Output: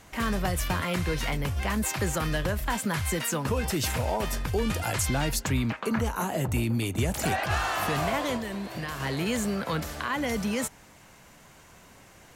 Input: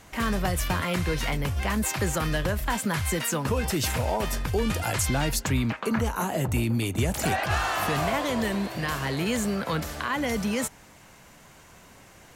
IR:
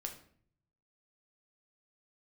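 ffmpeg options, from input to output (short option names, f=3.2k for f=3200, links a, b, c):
-filter_complex "[0:a]asettb=1/sr,asplit=3[a][b][c];[a]atrim=end=8.364[d];[b]atrim=start=8.36:end=9,asetpts=PTS-STARTPTS,afade=t=in:d=0.004:c=qsin,afade=t=out:st=0.636:d=0.004:c=qsin,acompressor=threshold=-29dB:ratio=6[e];[c]atrim=start=8.996[f];[d][e]acrossfade=d=0.004:c1=hsin:c2=qsin[g];[g][f]acrossfade=d=0.004:c1=qsin:c2=hsin,volume=-1.5dB"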